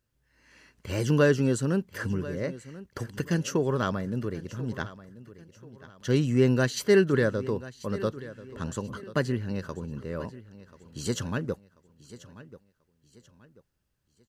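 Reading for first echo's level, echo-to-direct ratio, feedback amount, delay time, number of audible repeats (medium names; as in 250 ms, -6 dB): -17.0 dB, -16.5 dB, 35%, 1037 ms, 2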